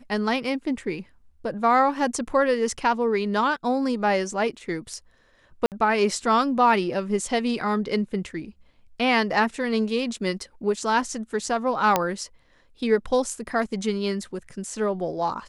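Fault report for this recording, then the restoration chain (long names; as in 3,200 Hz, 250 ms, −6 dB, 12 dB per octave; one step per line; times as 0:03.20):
0:05.66–0:05.72: drop-out 58 ms
0:11.96: click −5 dBFS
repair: click removal
repair the gap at 0:05.66, 58 ms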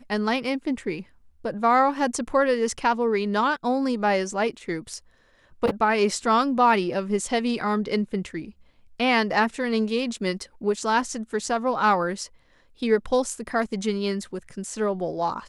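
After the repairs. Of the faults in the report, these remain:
none of them is left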